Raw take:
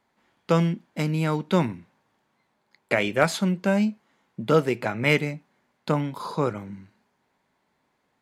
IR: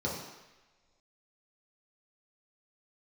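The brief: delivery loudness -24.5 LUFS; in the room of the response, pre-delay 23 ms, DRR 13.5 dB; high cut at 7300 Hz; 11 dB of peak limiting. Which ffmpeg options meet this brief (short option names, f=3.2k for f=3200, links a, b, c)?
-filter_complex "[0:a]lowpass=7.3k,alimiter=limit=-14.5dB:level=0:latency=1,asplit=2[a][b];[1:a]atrim=start_sample=2205,adelay=23[c];[b][c]afir=irnorm=-1:irlink=0,volume=-20dB[d];[a][d]amix=inputs=2:normalize=0,volume=3dB"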